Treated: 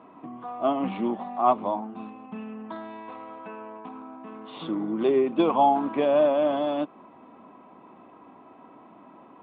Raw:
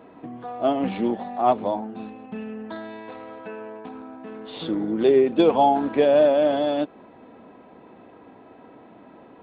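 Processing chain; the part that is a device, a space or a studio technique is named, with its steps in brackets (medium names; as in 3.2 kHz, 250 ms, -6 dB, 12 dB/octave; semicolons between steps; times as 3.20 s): guitar cabinet (cabinet simulation 110–3400 Hz, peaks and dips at 120 Hz -4 dB, 470 Hz -7 dB, 1.1 kHz +10 dB, 1.7 kHz -6 dB); trim -2.5 dB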